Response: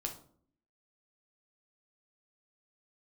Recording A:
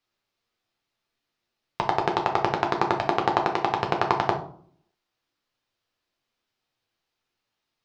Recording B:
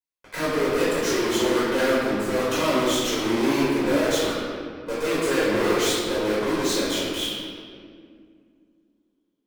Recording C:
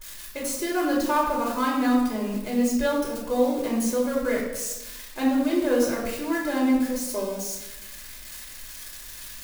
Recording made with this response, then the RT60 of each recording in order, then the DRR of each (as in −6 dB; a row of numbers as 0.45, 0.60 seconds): A; 0.55, 2.1, 1.1 seconds; 2.0, −10.0, −4.0 decibels